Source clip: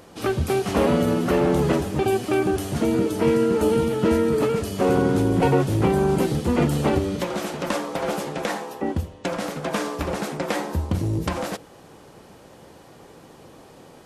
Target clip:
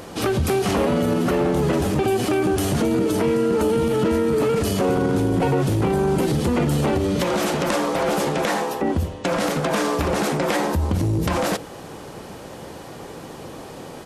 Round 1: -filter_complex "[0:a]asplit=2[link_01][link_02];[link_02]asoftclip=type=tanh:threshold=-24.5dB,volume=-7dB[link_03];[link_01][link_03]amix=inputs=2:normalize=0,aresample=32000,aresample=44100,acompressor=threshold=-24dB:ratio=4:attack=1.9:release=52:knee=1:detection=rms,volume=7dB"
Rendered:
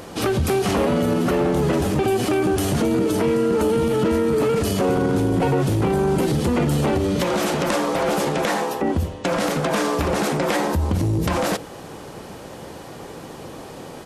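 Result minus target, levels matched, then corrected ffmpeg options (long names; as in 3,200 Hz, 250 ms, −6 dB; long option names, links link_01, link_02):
soft clipping: distortion −4 dB
-filter_complex "[0:a]asplit=2[link_01][link_02];[link_02]asoftclip=type=tanh:threshold=-33.5dB,volume=-7dB[link_03];[link_01][link_03]amix=inputs=2:normalize=0,aresample=32000,aresample=44100,acompressor=threshold=-24dB:ratio=4:attack=1.9:release=52:knee=1:detection=rms,volume=7dB"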